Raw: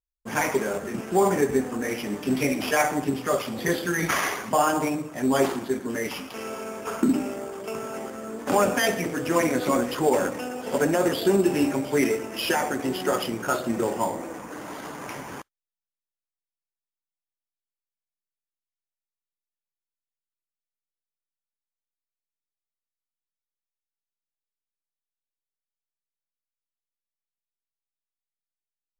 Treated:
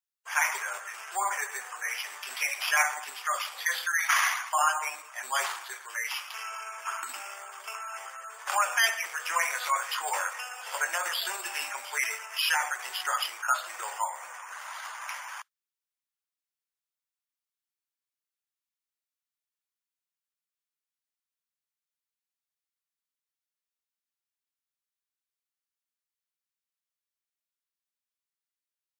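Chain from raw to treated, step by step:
high-pass filter 1,000 Hz 24 dB per octave
gate on every frequency bin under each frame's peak −25 dB strong
0:09.17–0:10.98: double-tracking delay 21 ms −9 dB
level +2 dB

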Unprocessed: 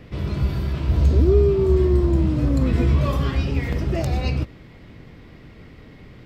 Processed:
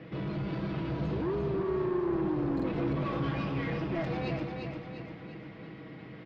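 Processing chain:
high-pass filter 170 Hz 12 dB per octave
comb filter 6.2 ms, depth 57%
in parallel at +0.5 dB: downward compressor, threshold −29 dBFS, peak gain reduction 12 dB
on the sum: soft clipping −21.5 dBFS, distortion −10 dB
high-frequency loss of the air 250 metres
on a send: repeating echo 347 ms, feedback 48%, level −5 dB
on the sum: buffer that repeats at 0:02.55, samples 2,048, times 1
level −7 dB

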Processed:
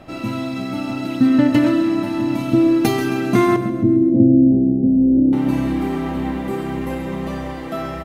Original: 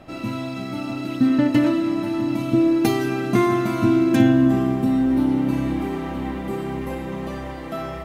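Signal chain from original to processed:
0:03.56–0:05.33: elliptic low-pass filter 570 Hz, stop band 50 dB
repeating echo 134 ms, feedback 46%, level −12 dB
level +3 dB

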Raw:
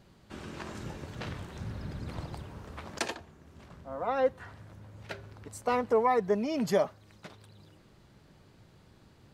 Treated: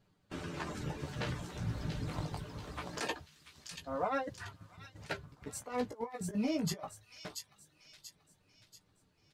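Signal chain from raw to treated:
reverb reduction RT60 0.59 s
noise gate −49 dBFS, range −14 dB
comb filter 6.7 ms, depth 31%
compressor whose output falls as the input rises −32 dBFS, ratio −0.5
flanger 0.23 Hz, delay 9.5 ms, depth 10 ms, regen −15%
on a send: delay with a high-pass on its return 685 ms, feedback 44%, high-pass 3,400 Hz, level −3 dB
on the sum: level +1 dB

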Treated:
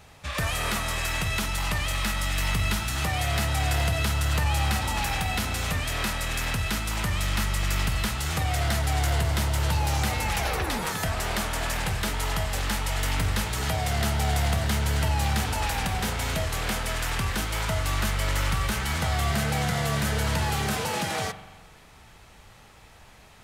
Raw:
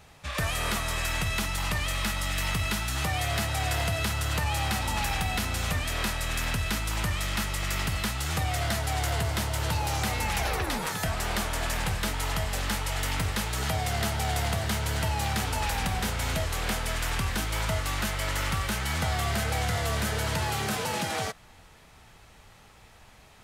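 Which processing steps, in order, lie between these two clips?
0:19.31–0:20.03: low shelf with overshoot 110 Hz −6 dB, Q 3
in parallel at −11.5 dB: hard clipping −31 dBFS, distortion −8 dB
on the sum: spring reverb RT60 1.2 s, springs 42 ms, chirp 70 ms, DRR 11 dB

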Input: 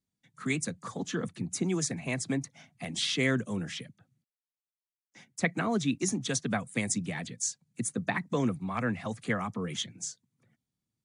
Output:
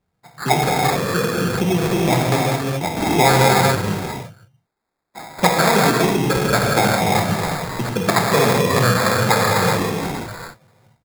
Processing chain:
high shelf with overshoot 3,200 Hz −8 dB, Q 3
comb filter 1.9 ms, depth 68%
reverb whose tail is shaped and stops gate 450 ms flat, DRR −3.5 dB
in parallel at +1 dB: downward compressor, threshold −38 dBFS, peak gain reduction 18 dB
on the sum: decimation without filtering 15×
level +7.5 dB

